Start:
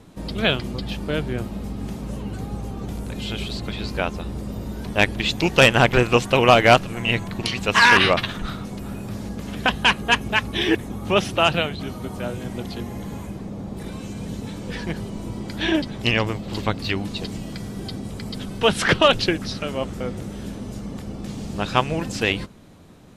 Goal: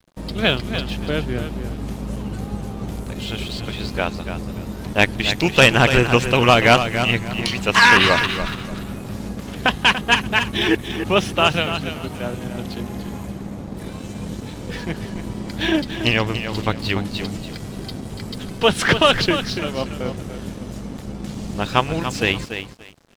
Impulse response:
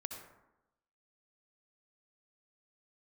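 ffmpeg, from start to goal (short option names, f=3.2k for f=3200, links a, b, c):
-af "aecho=1:1:288|576|864:0.355|0.0887|0.0222,aeval=exprs='sgn(val(0))*max(abs(val(0))-0.00708,0)':c=same,adynamicequalizer=threshold=0.0282:dfrequency=630:dqfactor=1.1:tfrequency=630:tqfactor=1.1:attack=5:release=100:ratio=0.375:range=2:mode=cutabove:tftype=bell,volume=2.5dB"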